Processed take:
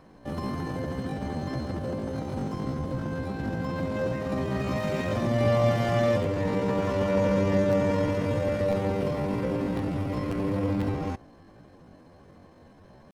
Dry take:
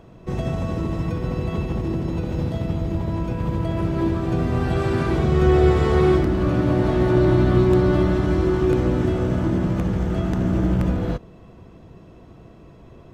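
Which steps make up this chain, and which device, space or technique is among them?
chipmunk voice (pitch shift +8 st); trim -7 dB

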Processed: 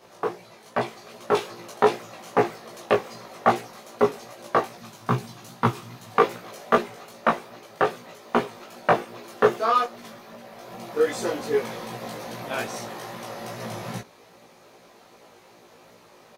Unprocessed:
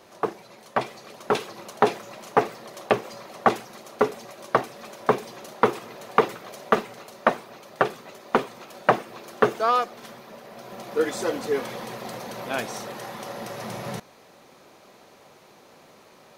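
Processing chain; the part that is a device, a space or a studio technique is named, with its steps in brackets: 4.78–6.14 s: graphic EQ 125/500/2000 Hz +11/-11/-4 dB; double-tracked vocal (doubling 17 ms -2.5 dB; chorus 2.5 Hz, delay 16.5 ms, depth 3.1 ms); trim +1 dB

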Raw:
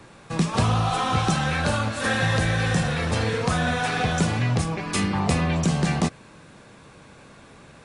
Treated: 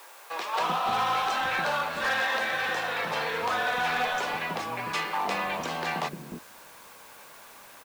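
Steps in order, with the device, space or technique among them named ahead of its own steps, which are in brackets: drive-through speaker (band-pass 500–3700 Hz; peaking EQ 930 Hz +5 dB 0.25 oct; hard clipper -21.5 dBFS, distortion -17 dB; white noise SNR 23 dB); 2.00–2.77 s: high-pass 190 Hz 6 dB/octave; bands offset in time highs, lows 300 ms, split 380 Hz

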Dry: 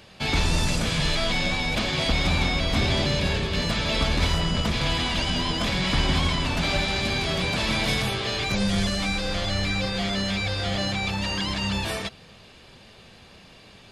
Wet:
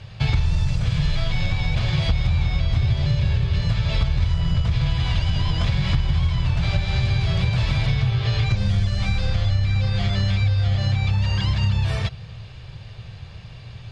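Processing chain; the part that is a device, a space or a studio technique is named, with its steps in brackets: jukebox (low-pass 5.8 kHz 12 dB/octave; resonant low shelf 170 Hz +12 dB, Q 3; compression, threshold -19 dBFS, peak gain reduction 14.5 dB); 7.86–8.64 s: low-pass 5.1 kHz -> 9.8 kHz 12 dB/octave; trim +2 dB

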